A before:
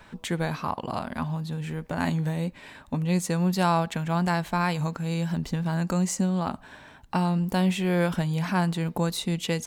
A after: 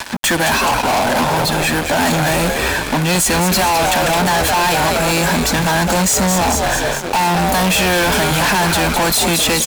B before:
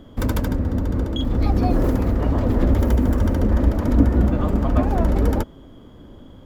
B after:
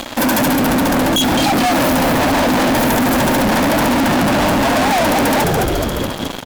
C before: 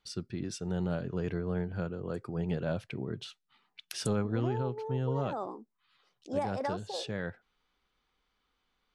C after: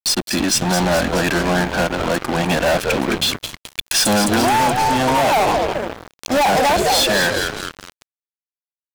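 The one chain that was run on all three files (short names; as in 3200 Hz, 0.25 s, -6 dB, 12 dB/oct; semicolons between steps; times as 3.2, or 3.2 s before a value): HPF 270 Hz 24 dB/oct; high shelf 7700 Hz +7 dB; notch 420 Hz, Q 12; comb 1.2 ms, depth 92%; in parallel at -1 dB: limiter -17.5 dBFS; on the sum: sample leveller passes 1; on a send: frequency-shifting echo 0.212 s, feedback 56%, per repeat -110 Hz, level -10 dB; on the sum: fuzz box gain 34 dB, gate -39 dBFS; requantised 8-bit, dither none; upward compressor, threshold -24 dBFS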